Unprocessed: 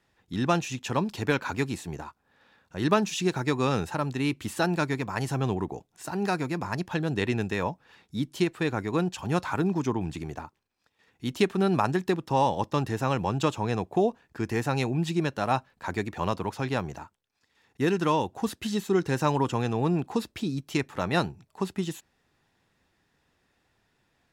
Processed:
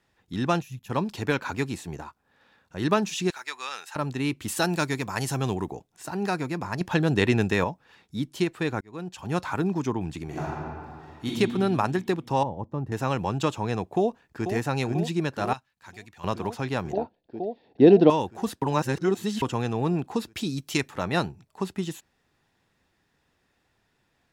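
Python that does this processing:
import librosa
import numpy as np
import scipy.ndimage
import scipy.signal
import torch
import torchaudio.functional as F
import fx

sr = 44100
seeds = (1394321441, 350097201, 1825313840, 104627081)

y = fx.spec_box(x, sr, start_s=0.62, length_s=0.28, low_hz=210.0, high_hz=10000.0, gain_db=-15)
y = fx.highpass(y, sr, hz=1400.0, slope=12, at=(3.3, 3.96))
y = fx.high_shelf(y, sr, hz=3900.0, db=10.0, at=(4.48, 5.72))
y = fx.reverb_throw(y, sr, start_s=10.24, length_s=1.03, rt60_s=2.3, drr_db=-7.5)
y = fx.curve_eq(y, sr, hz=(100.0, 920.0, 3900.0), db=(0, -9, -27), at=(12.43, 12.92))
y = fx.echo_throw(y, sr, start_s=13.87, length_s=0.64, ms=490, feedback_pct=80, wet_db=-8.0)
y = fx.tone_stack(y, sr, knobs='5-5-5', at=(15.53, 16.24))
y = fx.curve_eq(y, sr, hz=(110.0, 230.0, 690.0, 1200.0, 4300.0, 7800.0), db=(0, 10, 14, -9, 3, -29), at=(16.93, 18.1))
y = fx.high_shelf(y, sr, hz=2500.0, db=8.5, at=(20.35, 20.89), fade=0.02)
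y = fx.edit(y, sr, fx.clip_gain(start_s=6.81, length_s=0.83, db=5.5),
    fx.fade_in_span(start_s=8.81, length_s=0.6),
    fx.reverse_span(start_s=18.62, length_s=0.8), tone=tone)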